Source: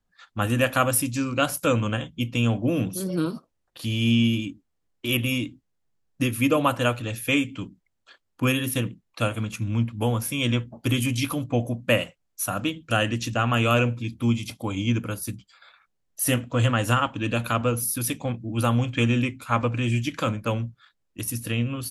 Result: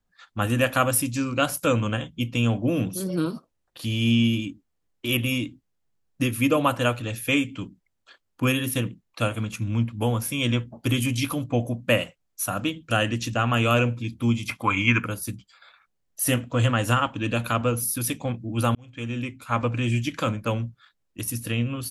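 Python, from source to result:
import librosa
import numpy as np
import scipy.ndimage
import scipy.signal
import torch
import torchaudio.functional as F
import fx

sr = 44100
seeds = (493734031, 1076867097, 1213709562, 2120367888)

y = fx.band_shelf(x, sr, hz=1600.0, db=16.0, octaves=1.7, at=(14.48, 15.04), fade=0.02)
y = fx.edit(y, sr, fx.fade_in_span(start_s=18.75, length_s=0.96), tone=tone)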